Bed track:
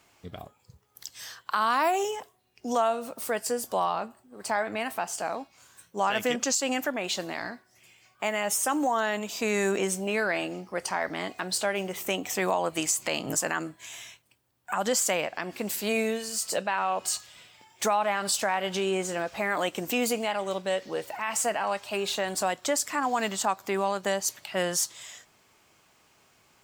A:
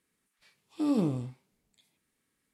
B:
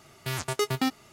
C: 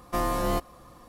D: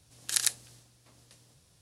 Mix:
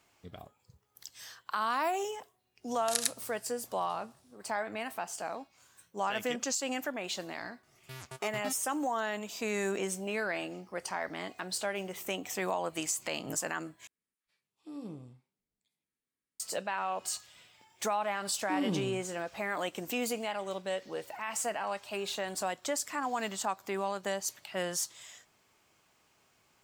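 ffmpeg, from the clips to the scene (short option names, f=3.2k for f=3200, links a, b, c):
-filter_complex "[1:a]asplit=2[a][b];[0:a]volume=-6.5dB[c];[4:a]highpass=100[d];[c]asplit=2[e][f];[e]atrim=end=13.874[g];[a]atrim=end=2.53,asetpts=PTS-STARTPTS,volume=-16dB[h];[f]atrim=start=16.396[i];[d]atrim=end=1.81,asetpts=PTS-STARTPTS,volume=-4dB,afade=t=in:d=0.1,afade=t=out:st=1.71:d=0.1,adelay=2590[j];[2:a]atrim=end=1.12,asetpts=PTS-STARTPTS,volume=-14.5dB,afade=t=in:d=0.004:c=hsin,afade=t=out:st=1.116:d=0.004:c=hsin,adelay=7630[k];[b]atrim=end=2.53,asetpts=PTS-STARTPTS,volume=-5.5dB,afade=t=in:d=0.004:c=hsin,afade=t=out:st=2.526:d=0.004:c=hsin,adelay=17700[l];[g][h]acrossfade=d=0.004:c1=hsin:c2=hsin[m];[m][i]acrossfade=d=0.004:c1=hsin:c2=hsin[n];[n][j][k][l]amix=inputs=4:normalize=0"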